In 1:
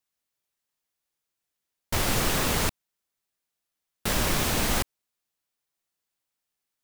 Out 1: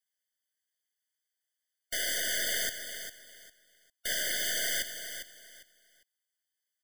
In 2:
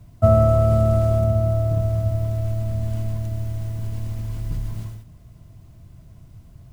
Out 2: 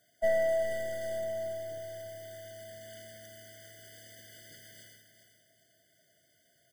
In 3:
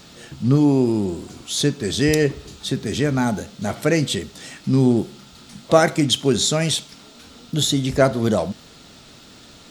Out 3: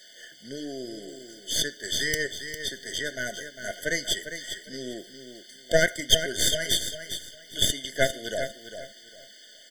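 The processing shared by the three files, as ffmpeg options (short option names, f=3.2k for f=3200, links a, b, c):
-af "highpass=990,aeval=exprs='0.562*(cos(1*acos(clip(val(0)/0.562,-1,1)))-cos(1*PI/2))+0.158*(cos(4*acos(clip(val(0)/0.562,-1,1)))-cos(4*PI/2))':c=same,aecho=1:1:402|804|1206:0.335|0.0804|0.0193,afftfilt=real='re*eq(mod(floor(b*sr/1024/730),2),0)':imag='im*eq(mod(floor(b*sr/1024/730),2),0)':win_size=1024:overlap=0.75"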